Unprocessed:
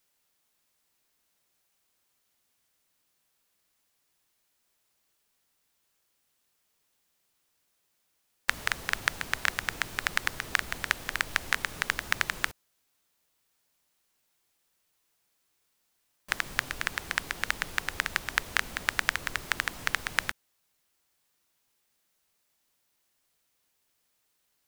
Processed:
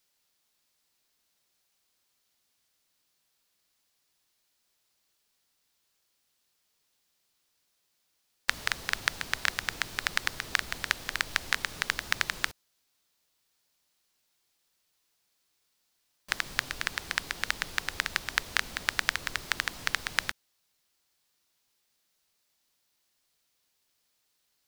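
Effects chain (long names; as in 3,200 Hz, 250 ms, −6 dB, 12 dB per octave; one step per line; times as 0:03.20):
parametric band 4,500 Hz +5.5 dB 1.1 octaves
level −2 dB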